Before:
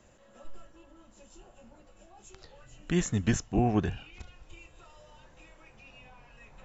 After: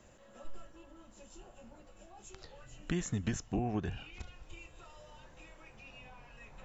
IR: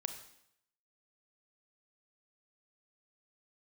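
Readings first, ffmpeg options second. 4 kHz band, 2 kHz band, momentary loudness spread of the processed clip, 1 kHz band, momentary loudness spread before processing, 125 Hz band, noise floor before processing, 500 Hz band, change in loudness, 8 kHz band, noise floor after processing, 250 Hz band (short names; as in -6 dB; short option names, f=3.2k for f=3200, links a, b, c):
-5.0 dB, -5.5 dB, 21 LU, -8.0 dB, 8 LU, -7.0 dB, -59 dBFS, -8.0 dB, -10.0 dB, n/a, -59 dBFS, -7.5 dB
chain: -af "acompressor=threshold=-30dB:ratio=10"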